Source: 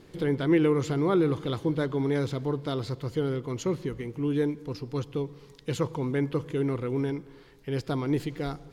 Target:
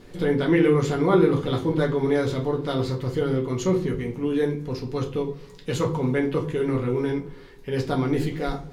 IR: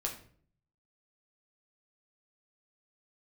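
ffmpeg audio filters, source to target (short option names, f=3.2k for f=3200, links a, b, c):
-filter_complex "[1:a]atrim=start_sample=2205,afade=t=out:st=0.26:d=0.01,atrim=end_sample=11907,asetrate=66150,aresample=44100[a];[0:a][a]afir=irnorm=-1:irlink=0,volume=7dB"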